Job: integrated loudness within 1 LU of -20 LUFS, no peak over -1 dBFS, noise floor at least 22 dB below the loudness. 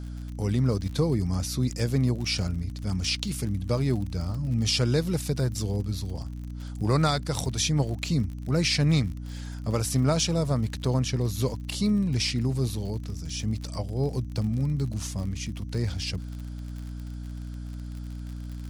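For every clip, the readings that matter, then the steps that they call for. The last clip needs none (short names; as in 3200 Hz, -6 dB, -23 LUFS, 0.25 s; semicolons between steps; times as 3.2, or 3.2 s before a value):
ticks 49/s; hum 60 Hz; harmonics up to 300 Hz; hum level -33 dBFS; loudness -27.5 LUFS; peak -10.0 dBFS; loudness target -20.0 LUFS
-> de-click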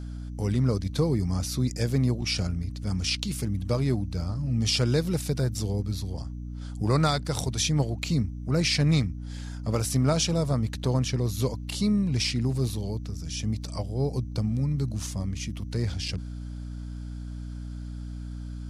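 ticks 0.053/s; hum 60 Hz; harmonics up to 300 Hz; hum level -33 dBFS
-> de-hum 60 Hz, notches 5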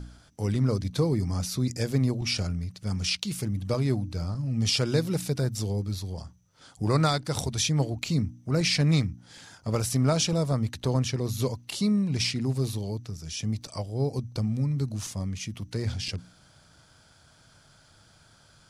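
hum none; loudness -28.0 LUFS; peak -10.0 dBFS; loudness target -20.0 LUFS
-> gain +8 dB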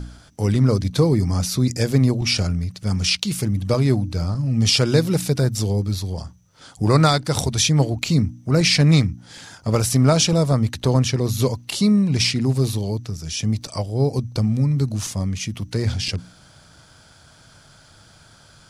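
loudness -20.0 LUFS; peak -2.0 dBFS; noise floor -50 dBFS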